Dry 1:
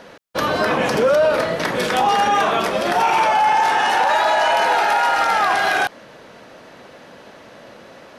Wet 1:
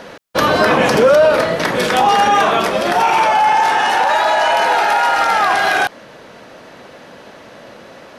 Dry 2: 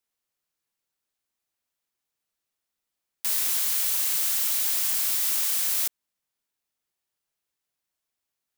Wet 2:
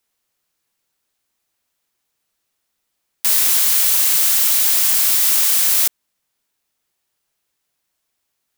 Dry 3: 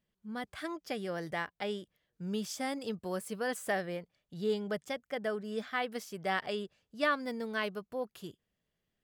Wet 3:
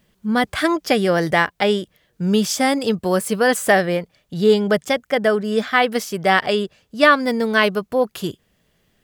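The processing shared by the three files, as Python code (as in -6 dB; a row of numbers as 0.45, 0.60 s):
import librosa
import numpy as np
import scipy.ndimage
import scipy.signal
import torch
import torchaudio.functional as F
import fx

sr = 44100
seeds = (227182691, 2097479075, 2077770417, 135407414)

y = fx.rider(x, sr, range_db=5, speed_s=2.0)
y = librosa.util.normalize(y) * 10.0 ** (-1.5 / 20.0)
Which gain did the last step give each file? +3.5, +10.5, +17.5 dB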